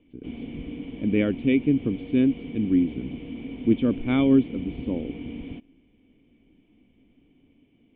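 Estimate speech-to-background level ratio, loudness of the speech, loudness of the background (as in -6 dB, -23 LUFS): 13.0 dB, -24.0 LUFS, -37.0 LUFS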